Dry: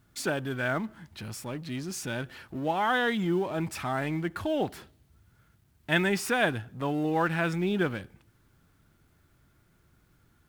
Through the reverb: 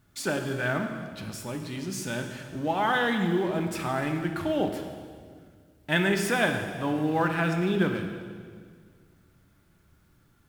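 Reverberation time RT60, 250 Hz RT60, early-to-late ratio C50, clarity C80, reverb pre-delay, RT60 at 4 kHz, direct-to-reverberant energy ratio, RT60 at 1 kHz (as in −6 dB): 1.9 s, 2.2 s, 6.0 dB, 7.0 dB, 3 ms, 1.7 s, 4.5 dB, 1.7 s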